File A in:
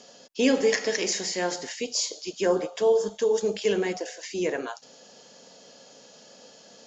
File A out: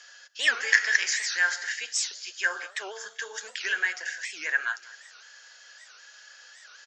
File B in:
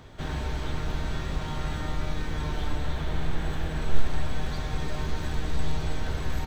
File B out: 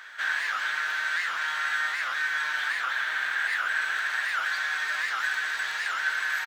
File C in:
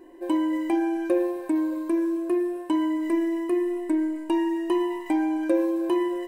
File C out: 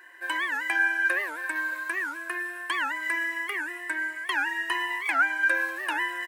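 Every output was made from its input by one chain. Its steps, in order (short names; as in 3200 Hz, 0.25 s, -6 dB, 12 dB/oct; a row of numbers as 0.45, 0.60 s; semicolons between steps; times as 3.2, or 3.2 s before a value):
resonant high-pass 1600 Hz, resonance Q 6.3; feedback echo 0.193 s, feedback 44%, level -20 dB; record warp 78 rpm, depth 250 cents; match loudness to -27 LUFS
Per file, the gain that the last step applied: -1.0, +4.5, +5.5 dB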